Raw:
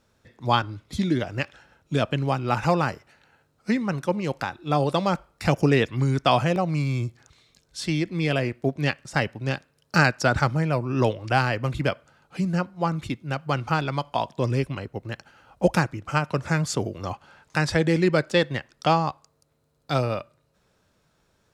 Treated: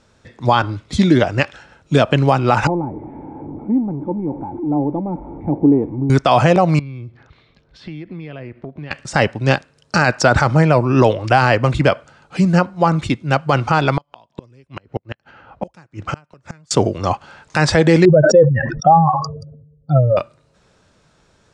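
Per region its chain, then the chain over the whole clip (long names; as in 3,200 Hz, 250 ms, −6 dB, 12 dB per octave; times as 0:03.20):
0:02.67–0:06.10: converter with a step at zero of −24 dBFS + formant resonators in series u + upward compression, threshold −39 dBFS
0:06.79–0:08.91: downward compressor 12 to 1, threshold −37 dBFS + high-frequency loss of the air 350 metres
0:13.97–0:16.71: low-pass that shuts in the quiet parts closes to 2,000 Hz, open at −21.5 dBFS + high-pass filter 48 Hz + gate with flip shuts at −21 dBFS, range −34 dB
0:18.05–0:20.17: expanding power law on the bin magnitudes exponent 3.2 + low-pass filter 1,300 Hz 6 dB per octave + level that may fall only so fast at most 53 dB per second
whole clip: Butterworth low-pass 9,200 Hz 36 dB per octave; dynamic equaliser 770 Hz, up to +5 dB, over −33 dBFS, Q 0.75; boost into a limiter +11.5 dB; level −1 dB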